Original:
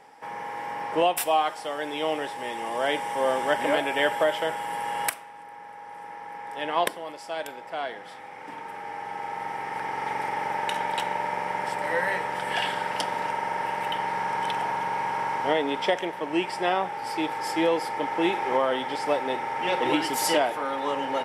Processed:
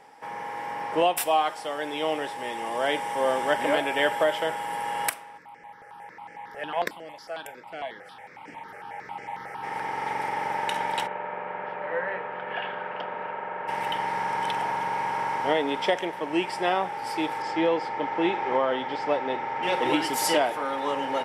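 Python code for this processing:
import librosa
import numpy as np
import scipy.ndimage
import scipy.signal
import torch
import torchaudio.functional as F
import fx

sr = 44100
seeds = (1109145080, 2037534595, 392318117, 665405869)

y = fx.phaser_held(x, sr, hz=11.0, low_hz=960.0, high_hz=3700.0, at=(5.37, 9.62), fade=0.02)
y = fx.cabinet(y, sr, low_hz=210.0, low_slope=12, high_hz=2400.0, hz=(290.0, 880.0, 2000.0), db=(-10, -7, -8), at=(11.06, 13.67), fade=0.02)
y = fx.air_absorb(y, sr, metres=130.0, at=(17.42, 19.63))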